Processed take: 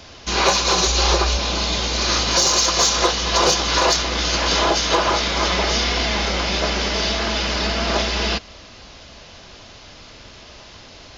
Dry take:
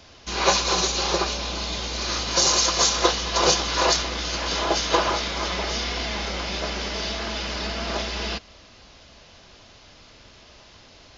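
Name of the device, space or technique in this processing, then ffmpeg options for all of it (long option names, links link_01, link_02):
soft clipper into limiter: -filter_complex "[0:a]asoftclip=type=tanh:threshold=-7.5dB,alimiter=limit=-14.5dB:level=0:latency=1:release=295,asplit=3[link_01][link_02][link_03];[link_01]afade=type=out:start_time=0.85:duration=0.02[link_04];[link_02]asubboost=boost=10:cutoff=72,afade=type=in:start_time=0.85:duration=0.02,afade=type=out:start_time=1.37:duration=0.02[link_05];[link_03]afade=type=in:start_time=1.37:duration=0.02[link_06];[link_04][link_05][link_06]amix=inputs=3:normalize=0,volume=7.5dB"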